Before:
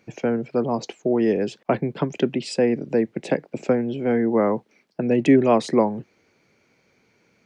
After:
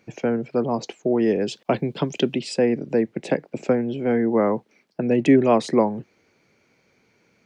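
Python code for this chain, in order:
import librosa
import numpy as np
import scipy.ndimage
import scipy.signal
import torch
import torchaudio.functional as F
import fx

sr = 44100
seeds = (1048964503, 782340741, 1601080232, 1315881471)

y = fx.high_shelf_res(x, sr, hz=2500.0, db=6.0, q=1.5, at=(1.48, 2.4))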